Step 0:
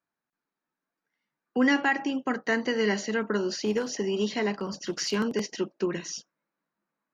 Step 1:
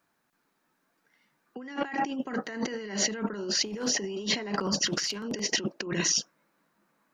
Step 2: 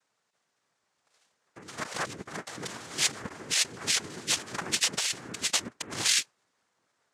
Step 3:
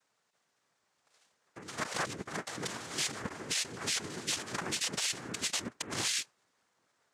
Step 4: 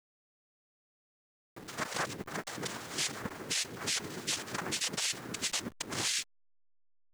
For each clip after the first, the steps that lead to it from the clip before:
compressor whose output falls as the input rises −38 dBFS, ratio −1; level +5.5 dB
tilt shelving filter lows −6.5 dB; cochlear-implant simulation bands 3; level −4 dB
brickwall limiter −22 dBFS, peak gain reduction 11 dB
hold until the input has moved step −47 dBFS

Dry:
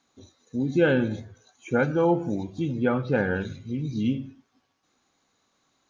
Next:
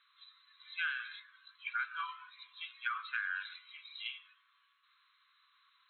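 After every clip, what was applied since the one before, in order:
brick-wall band-pass 1,000–4,200 Hz
downward compressor 6 to 1, threshold −37 dBFS, peak gain reduction 11.5 dB
level that may rise only so fast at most 470 dB per second
level +3.5 dB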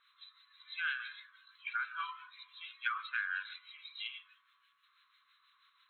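two-band tremolo in antiphase 6.1 Hz, depth 70%, crossover 1,300 Hz
level +4 dB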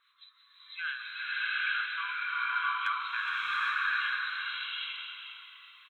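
gain into a clipping stage and back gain 23 dB
echo with shifted repeats 416 ms, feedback 37%, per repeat −47 Hz, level −9.5 dB
slow-attack reverb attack 800 ms, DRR −8.5 dB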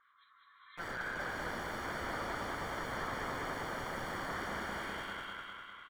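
wrap-around overflow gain 34.5 dB
Savitzky-Golay smoothing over 41 samples
repeating echo 201 ms, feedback 53%, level −3 dB
level +5 dB

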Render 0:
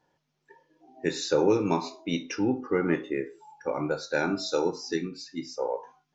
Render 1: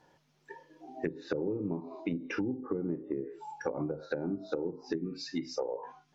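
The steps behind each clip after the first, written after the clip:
treble cut that deepens with the level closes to 380 Hz, closed at −24.5 dBFS
downward compressor 6 to 1, threshold −38 dBFS, peak gain reduction 16 dB
level +7 dB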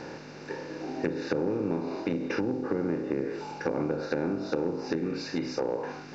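compressor on every frequency bin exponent 0.4
high-shelf EQ 5,800 Hz −4 dB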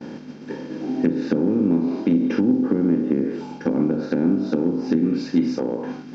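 hollow resonant body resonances 230/3,200 Hz, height 18 dB, ringing for 45 ms
downward expander −30 dBFS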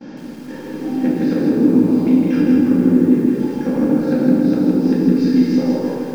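rectangular room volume 500 cubic metres, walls mixed, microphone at 2.2 metres
feedback echo at a low word length 161 ms, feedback 55%, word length 7 bits, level −3 dB
level −3.5 dB

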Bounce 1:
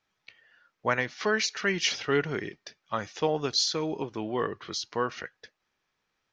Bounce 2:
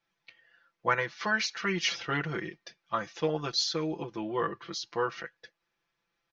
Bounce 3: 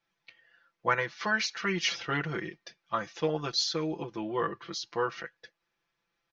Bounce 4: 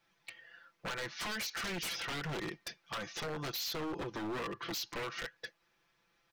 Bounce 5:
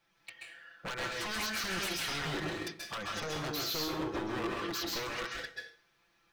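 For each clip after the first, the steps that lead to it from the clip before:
low-pass filter 6,300 Hz 12 dB per octave; comb filter 5.9 ms, depth 91%; dynamic equaliser 1,200 Hz, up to +5 dB, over −39 dBFS, Q 1.9; level −5 dB
no processing that can be heard
in parallel at +3 dB: brickwall limiter −22 dBFS, peak gain reduction 10 dB; on the sum: downward compressor 6 to 1, threshold −30 dBFS, peak gain reduction 12.5 dB; wave folding −32 dBFS; level −1 dB
convolution reverb RT60 0.45 s, pre-delay 127 ms, DRR −1 dB

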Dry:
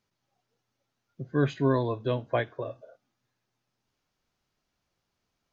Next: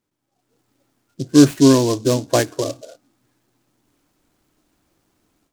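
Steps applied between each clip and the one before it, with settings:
parametric band 300 Hz +12 dB 0.51 octaves
automatic gain control gain up to 13 dB
short delay modulated by noise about 5,100 Hz, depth 0.078 ms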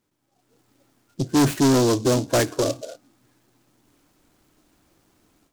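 soft clipping −18 dBFS, distortion −5 dB
level +3.5 dB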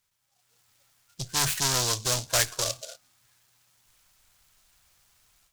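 guitar amp tone stack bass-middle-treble 10-0-10
level +4.5 dB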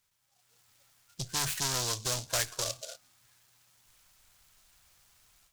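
downward compressor 1.5 to 1, threshold −37 dBFS, peak gain reduction 7 dB

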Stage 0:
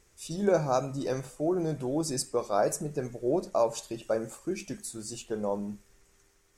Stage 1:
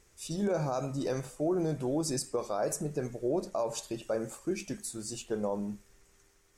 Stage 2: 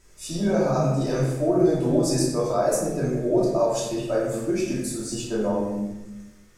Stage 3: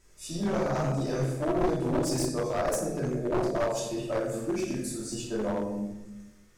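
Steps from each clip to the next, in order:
brickwall limiter −22 dBFS, peak gain reduction 9 dB
rectangular room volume 430 cubic metres, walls mixed, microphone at 2.8 metres; level +1 dB
wavefolder on the positive side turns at −19 dBFS; level −5 dB

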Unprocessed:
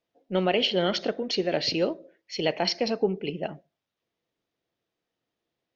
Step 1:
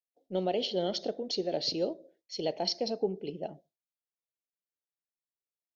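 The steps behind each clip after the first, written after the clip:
bass and treble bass −4 dB, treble +2 dB
noise gate with hold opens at −54 dBFS
flat-topped bell 1,700 Hz −13 dB
level −5 dB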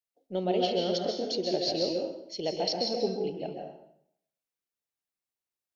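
dense smooth reverb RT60 0.73 s, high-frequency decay 0.85×, pre-delay 120 ms, DRR 0.5 dB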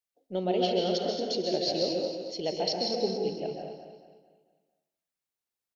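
repeating echo 224 ms, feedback 41%, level −9 dB

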